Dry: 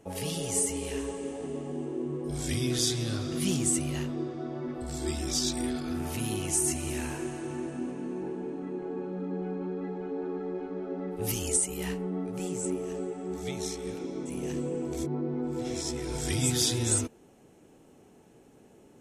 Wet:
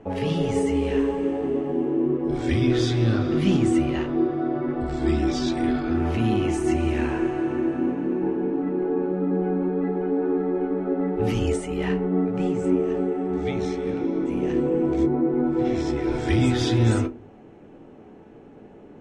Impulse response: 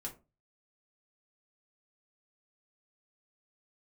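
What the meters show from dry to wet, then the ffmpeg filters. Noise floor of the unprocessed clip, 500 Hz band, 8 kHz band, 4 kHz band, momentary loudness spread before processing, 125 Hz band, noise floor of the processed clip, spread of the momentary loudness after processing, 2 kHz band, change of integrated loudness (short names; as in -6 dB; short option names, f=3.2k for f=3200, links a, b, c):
-57 dBFS, +10.0 dB, -13.0 dB, -1.0 dB, 10 LU, +8.5 dB, -46 dBFS, 5 LU, +7.5 dB, +7.5 dB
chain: -filter_complex "[0:a]lowpass=2.2k,asplit=2[a][b];[1:a]atrim=start_sample=2205[c];[b][c]afir=irnorm=-1:irlink=0,volume=0.5dB[d];[a][d]amix=inputs=2:normalize=0,volume=5.5dB"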